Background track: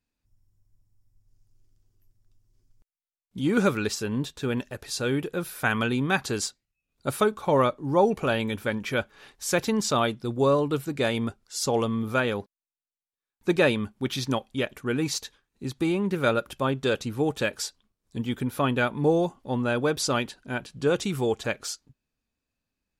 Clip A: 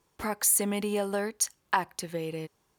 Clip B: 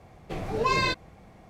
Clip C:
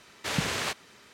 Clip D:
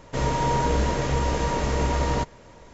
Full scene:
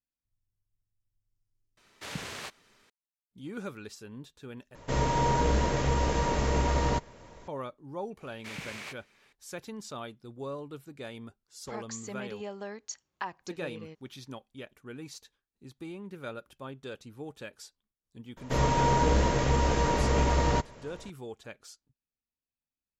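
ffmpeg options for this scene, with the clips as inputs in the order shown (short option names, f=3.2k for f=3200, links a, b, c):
-filter_complex "[3:a]asplit=2[a][b];[4:a]asplit=2[c][d];[0:a]volume=-16.5dB[e];[b]equalizer=f=2.3k:t=o:w=0.39:g=9.5[f];[1:a]aresample=16000,aresample=44100[g];[e]asplit=2[h][i];[h]atrim=end=4.754[j];[c]atrim=end=2.73,asetpts=PTS-STARTPTS,volume=-3dB[k];[i]atrim=start=7.476[l];[a]atrim=end=1.13,asetpts=PTS-STARTPTS,volume=-9.5dB,afade=t=in:d=0.004:c=hsin,afade=t=out:st=1.126:d=0.004:c=hsin,adelay=1770[m];[f]atrim=end=1.13,asetpts=PTS-STARTPTS,volume=-14dB,afade=t=in:d=0.004:c=hsin,afade=t=out:st=1.126:d=0.004:c=hsin,adelay=8200[n];[g]atrim=end=2.78,asetpts=PTS-STARTPTS,volume=-10dB,afade=t=in:d=0.004:c=hsin,afade=t=out:st=2.776:d=0.004:c=hsin,adelay=11480[o];[d]atrim=end=2.73,asetpts=PTS-STARTPTS,volume=-1.5dB,afade=t=in:d=0.004:c=hsin,afade=t=out:st=2.726:d=0.004:c=hsin,adelay=18370[p];[j][k]acrossfade=d=0.004:c1=hsin:c2=hsin[q];[q][l]acrossfade=d=0.004:c1=hsin:c2=hsin[r];[r][m][n][o][p]amix=inputs=5:normalize=0"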